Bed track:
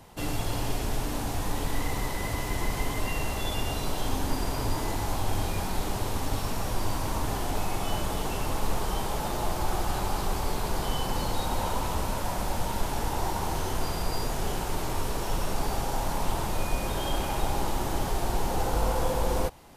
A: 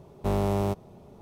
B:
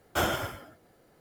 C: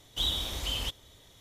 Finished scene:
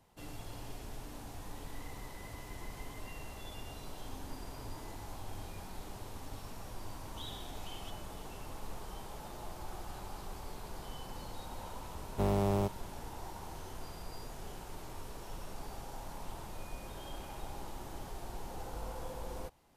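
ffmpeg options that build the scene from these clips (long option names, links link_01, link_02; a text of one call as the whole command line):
ffmpeg -i bed.wav -i cue0.wav -i cue1.wav -i cue2.wav -filter_complex "[0:a]volume=-16dB[link_01];[3:a]atrim=end=1.4,asetpts=PTS-STARTPTS,volume=-18dB,afade=type=in:duration=0.004:curve=hsin,afade=type=out:start_time=1.396:duration=0.004:curve=hsin,adelay=7000[link_02];[1:a]atrim=end=1.21,asetpts=PTS-STARTPTS,volume=-4.5dB,afade=type=in:duration=0.004:curve=hsin,afade=type=out:start_time=1.206:duration=0.004:curve=hsin,adelay=11940[link_03];[link_01][link_02][link_03]amix=inputs=3:normalize=0" out.wav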